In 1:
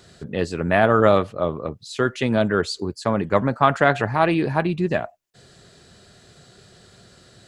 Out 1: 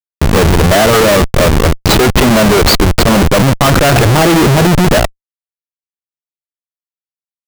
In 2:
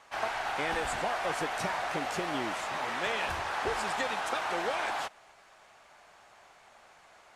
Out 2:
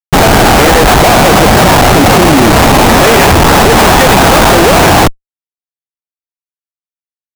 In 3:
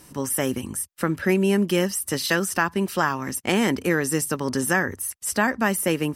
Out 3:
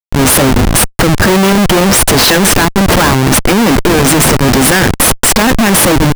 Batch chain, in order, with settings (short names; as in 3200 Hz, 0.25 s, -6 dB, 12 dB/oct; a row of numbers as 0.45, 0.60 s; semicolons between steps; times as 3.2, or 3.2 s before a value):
in parallel at +0.5 dB: compressor 4:1, threshold -30 dBFS; on the sum: Schmitt trigger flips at -26.5 dBFS; normalise peaks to -1.5 dBFS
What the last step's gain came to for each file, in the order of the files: +13.0, +24.5, +13.5 dB